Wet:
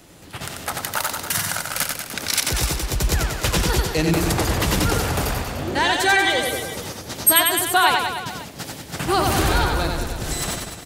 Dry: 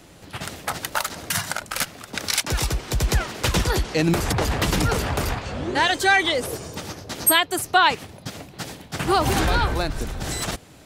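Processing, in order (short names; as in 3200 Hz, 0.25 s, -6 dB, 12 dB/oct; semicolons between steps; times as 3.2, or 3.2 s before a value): high shelf 9300 Hz +7 dB; reverse bouncing-ball echo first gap 90 ms, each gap 1.1×, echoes 5; gain -1 dB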